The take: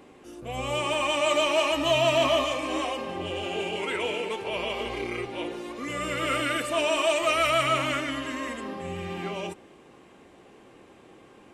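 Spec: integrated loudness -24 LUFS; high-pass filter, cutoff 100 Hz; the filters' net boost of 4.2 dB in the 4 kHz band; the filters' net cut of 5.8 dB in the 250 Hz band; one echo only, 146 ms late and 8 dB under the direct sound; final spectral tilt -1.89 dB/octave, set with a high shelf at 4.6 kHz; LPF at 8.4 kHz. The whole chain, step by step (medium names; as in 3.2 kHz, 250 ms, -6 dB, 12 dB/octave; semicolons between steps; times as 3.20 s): high-pass 100 Hz; low-pass 8.4 kHz; peaking EQ 250 Hz -8 dB; peaking EQ 4 kHz +5 dB; treble shelf 4.6 kHz +3.5 dB; delay 146 ms -8 dB; trim +1 dB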